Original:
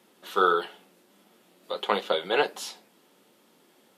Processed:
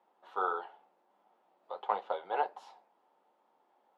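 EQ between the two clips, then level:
resonant band-pass 830 Hz, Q 3.5
0.0 dB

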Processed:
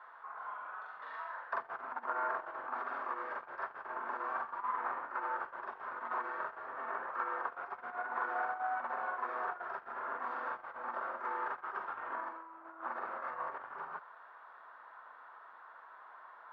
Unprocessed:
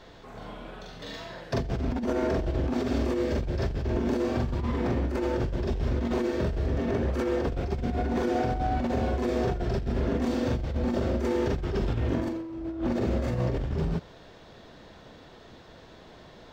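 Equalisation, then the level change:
flat-topped band-pass 1,200 Hz, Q 2.1
+6.5 dB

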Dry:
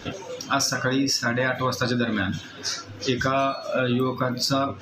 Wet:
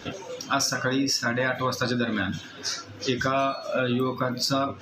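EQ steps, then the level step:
low-shelf EQ 62 Hz −9 dB
−1.5 dB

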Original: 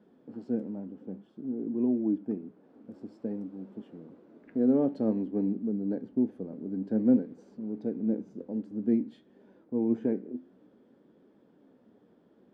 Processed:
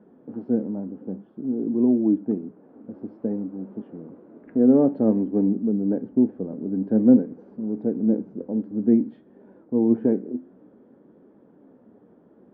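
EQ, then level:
low-pass filter 1,400 Hz 12 dB per octave
+8.0 dB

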